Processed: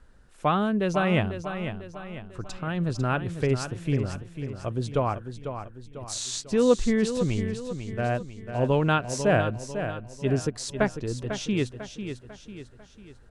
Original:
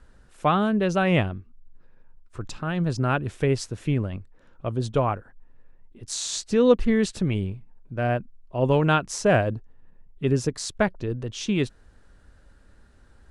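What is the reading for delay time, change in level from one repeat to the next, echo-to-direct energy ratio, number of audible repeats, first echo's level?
497 ms, -7.0 dB, -8.0 dB, 4, -9.0 dB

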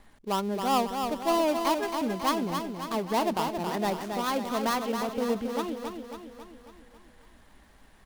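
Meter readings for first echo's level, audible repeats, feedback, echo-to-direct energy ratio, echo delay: -6.0 dB, 6, 55%, -4.5 dB, 273 ms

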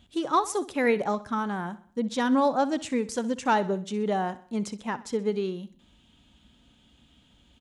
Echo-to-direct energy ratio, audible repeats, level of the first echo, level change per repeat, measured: -16.0 dB, 3, -17.0 dB, -6.5 dB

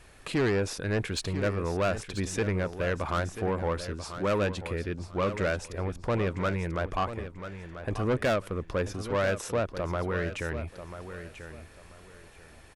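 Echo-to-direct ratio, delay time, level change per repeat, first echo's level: -10.5 dB, 989 ms, -12.5 dB, -11.0 dB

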